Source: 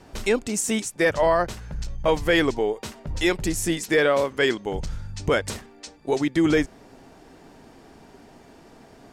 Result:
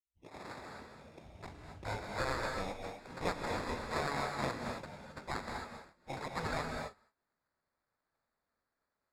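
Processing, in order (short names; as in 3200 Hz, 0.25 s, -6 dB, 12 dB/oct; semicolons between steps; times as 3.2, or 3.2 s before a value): tape start at the beginning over 2.95 s; gate -43 dBFS, range -23 dB; spectral gate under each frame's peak -15 dB weak; sample-rate reducer 3000 Hz, jitter 0%; air absorption 62 m; non-linear reverb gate 0.29 s rising, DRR 2.5 dB; gain -6.5 dB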